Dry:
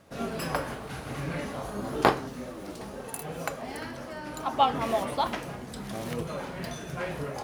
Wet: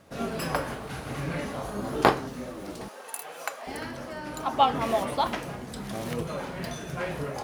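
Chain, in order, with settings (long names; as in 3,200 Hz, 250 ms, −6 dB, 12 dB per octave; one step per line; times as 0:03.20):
0:02.88–0:03.67: high-pass filter 720 Hz 12 dB per octave
level +1.5 dB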